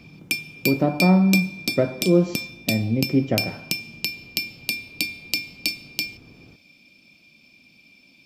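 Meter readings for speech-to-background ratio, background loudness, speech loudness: 5.5 dB, -27.5 LUFS, -22.0 LUFS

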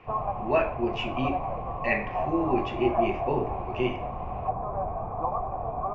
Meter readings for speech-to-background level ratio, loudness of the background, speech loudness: 2.5 dB, -32.0 LUFS, -29.5 LUFS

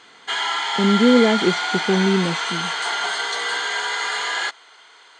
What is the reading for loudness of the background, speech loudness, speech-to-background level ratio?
-22.5 LUFS, -19.0 LUFS, 3.5 dB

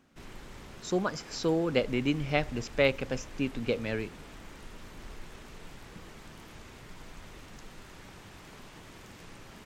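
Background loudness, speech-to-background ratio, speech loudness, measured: -48.5 LUFS, 18.0 dB, -30.5 LUFS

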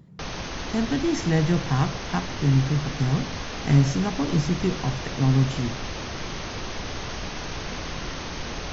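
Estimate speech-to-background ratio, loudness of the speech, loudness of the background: 8.5 dB, -24.5 LUFS, -33.0 LUFS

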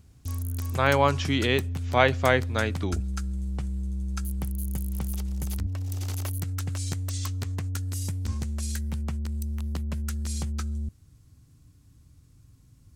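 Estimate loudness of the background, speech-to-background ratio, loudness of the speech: -32.0 LUFS, 7.0 dB, -25.0 LUFS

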